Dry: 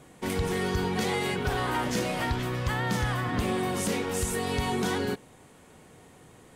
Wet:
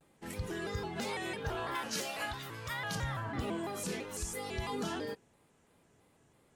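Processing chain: spectral noise reduction 7 dB; 1.75–2.95 s: tilt EQ +2.5 dB/octave; vibrato with a chosen wave square 3 Hz, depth 160 cents; trim -7.5 dB

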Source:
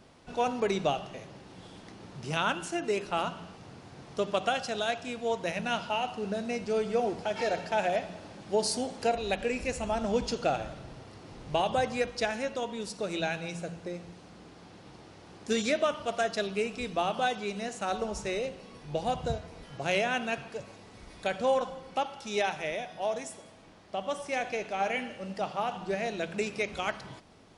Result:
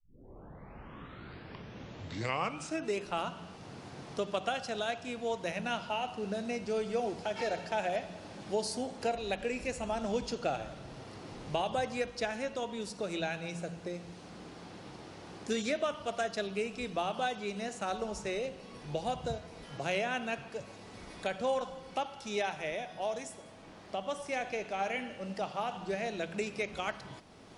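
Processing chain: tape start-up on the opening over 2.96 s; three bands compressed up and down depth 40%; trim -4 dB

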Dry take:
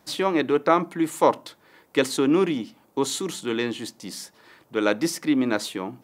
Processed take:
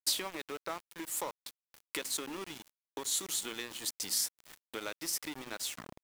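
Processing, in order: tape stop on the ending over 0.40 s; dynamic bell 9.5 kHz, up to -3 dB, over -56 dBFS, Q 6.5; compression 5:1, threshold -37 dBFS, peak gain reduction 21.5 dB; RIAA curve recording; small samples zeroed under -41 dBFS

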